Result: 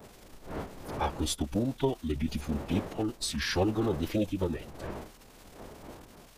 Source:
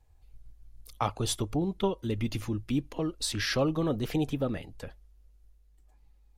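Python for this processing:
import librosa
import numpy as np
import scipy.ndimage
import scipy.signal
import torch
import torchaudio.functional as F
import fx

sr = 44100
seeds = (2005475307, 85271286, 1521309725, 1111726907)

y = fx.dmg_wind(x, sr, seeds[0], corner_hz=630.0, level_db=-44.0)
y = fx.dmg_crackle(y, sr, seeds[1], per_s=360.0, level_db=-39.0)
y = fx.pitch_keep_formants(y, sr, semitones=-6.5)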